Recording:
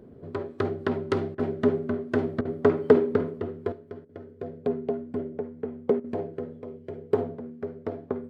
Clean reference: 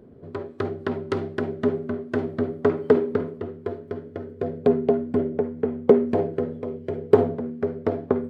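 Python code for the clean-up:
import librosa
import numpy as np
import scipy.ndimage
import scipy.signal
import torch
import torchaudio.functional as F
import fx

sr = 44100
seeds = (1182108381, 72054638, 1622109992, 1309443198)

y = fx.fix_interpolate(x, sr, at_s=(1.35, 2.41, 4.05, 6.0), length_ms=40.0)
y = fx.gain(y, sr, db=fx.steps((0.0, 0.0), (3.72, 8.5)))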